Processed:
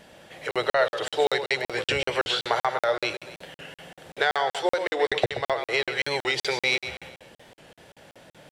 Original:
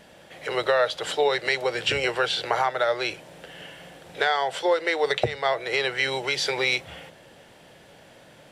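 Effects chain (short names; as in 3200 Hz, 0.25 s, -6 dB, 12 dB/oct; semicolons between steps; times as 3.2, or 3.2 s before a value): feedback echo 0.129 s, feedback 38%, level -10 dB; crackling interface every 0.19 s, samples 2048, zero, from 0.51; record warp 45 rpm, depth 100 cents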